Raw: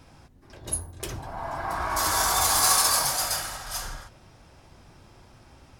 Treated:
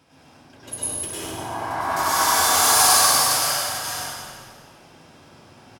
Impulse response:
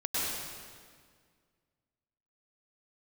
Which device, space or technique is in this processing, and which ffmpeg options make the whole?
PA in a hall: -filter_complex "[0:a]highpass=150,equalizer=f=3k:t=o:w=0.33:g=4,aecho=1:1:99:0.473[a];[1:a]atrim=start_sample=2205[b];[a][b]afir=irnorm=-1:irlink=0,volume=-3dB"

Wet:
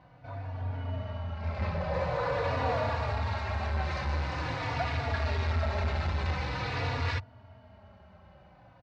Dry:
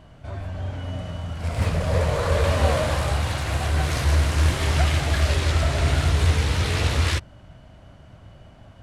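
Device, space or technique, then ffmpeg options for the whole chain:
barber-pole flanger into a guitar amplifier: -filter_complex "[0:a]asplit=2[a][b];[b]adelay=3.5,afreqshift=-0.46[c];[a][c]amix=inputs=2:normalize=1,asoftclip=type=tanh:threshold=-18dB,highpass=90,equalizer=f=92:t=q:w=4:g=3,equalizer=f=150:t=q:w=4:g=-7,equalizer=f=330:t=q:w=4:g=-8,equalizer=f=880:t=q:w=4:g=6,equalizer=f=3.2k:t=q:w=4:g=-9,lowpass=f=4.4k:w=0.5412,lowpass=f=4.4k:w=1.3066,asettb=1/sr,asplit=3[d][e][f];[d]atrim=end=0.624[g];[e]atrim=start=0.62:end=1.94,asetpts=PTS-STARTPTS,afade=t=in:d=0.004:c=qsin,afade=t=out:st=1.316:d=0.004:c=qsin,lowpass=5.9k[h];[f]atrim=start=1.936[i];[g][h]acrossfade=d=0.004:c1=hsin:c2=qsin[j];[j][i]acrossfade=d=0.004:c1=qsin:c2=hsin,volume=-2dB"

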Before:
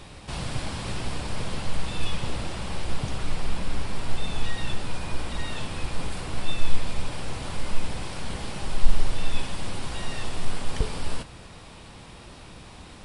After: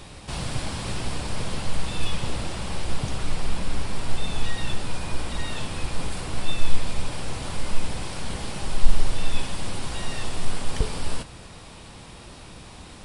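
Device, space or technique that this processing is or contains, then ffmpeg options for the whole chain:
exciter from parts: -filter_complex "[0:a]asplit=2[a][b];[b]highpass=f=2.5k:p=1,asoftclip=type=tanh:threshold=-35dB,highpass=f=4.8k:p=1,volume=-5dB[c];[a][c]amix=inputs=2:normalize=0,volume=1.5dB"

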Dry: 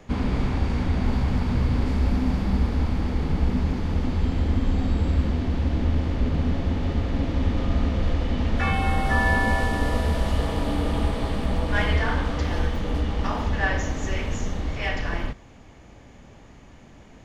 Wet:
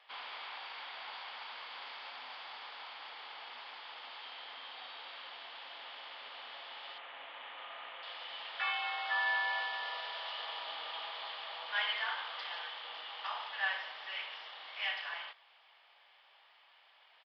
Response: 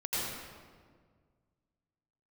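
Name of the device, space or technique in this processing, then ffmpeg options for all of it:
musical greeting card: -filter_complex "[0:a]asettb=1/sr,asplit=3[a][b][c];[a]atrim=end=6.984[d];[b]atrim=start=6.98:end=8.03,asetpts=PTS-STARTPTS,afade=t=in:d=0.004:c=qsin,afade=t=out:st=1.046:d=0.004:c=qsin,lowpass=f=3k:w=0.5412,lowpass=f=3k:w=1.3066[e];[c]atrim=start=8.026[f];[d][e]acrossfade=d=0.004:c1=hsin:c2=qsin[g];[g][f]acrossfade=d=0.004:c1=qsin:c2=hsin,aresample=11025,aresample=44100,highpass=f=820:w=0.5412,highpass=f=820:w=1.3066,equalizer=f=3.2k:t=o:w=0.51:g=9,volume=-8.5dB"

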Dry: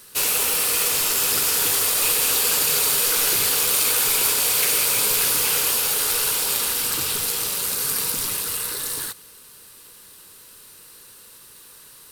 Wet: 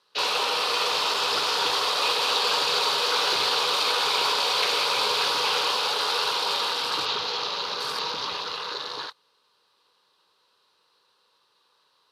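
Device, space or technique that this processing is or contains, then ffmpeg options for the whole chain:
over-cleaned archive recording: -af "highpass=140,lowpass=5.1k,afwtdn=0.0126,equalizer=f=125:t=o:w=1:g=-6,equalizer=f=250:t=o:w=1:g=-6,equalizer=f=500:t=o:w=1:g=3,equalizer=f=1k:t=o:w=1:g=10,equalizer=f=2k:t=o:w=1:g=-5,equalizer=f=4k:t=o:w=1:g=9,equalizer=f=8k:t=o:w=1:g=-9,volume=-1dB"

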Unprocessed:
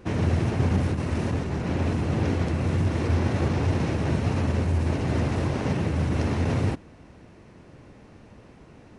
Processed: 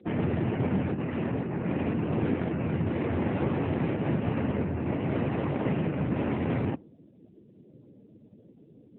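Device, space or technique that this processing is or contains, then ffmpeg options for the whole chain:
mobile call with aggressive noise cancelling: -af "highpass=140,afftdn=nr=29:nf=-44" -ar 8000 -c:a libopencore_amrnb -b:a 7950

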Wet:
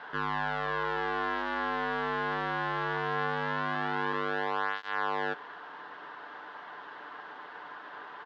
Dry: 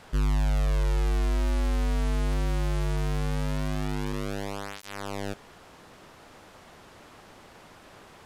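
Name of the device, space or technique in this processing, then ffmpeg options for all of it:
phone earpiece: -af "highpass=430,equalizer=f=580:t=q:w=4:g=-6,equalizer=f=980:t=q:w=4:g=7,equalizer=f=1.6k:t=q:w=4:g=9,equalizer=f=2.4k:t=q:w=4:g=-9,lowpass=f=3.3k:w=0.5412,lowpass=f=3.3k:w=1.3066,aecho=1:1:6.8:0.42,volume=4.5dB"

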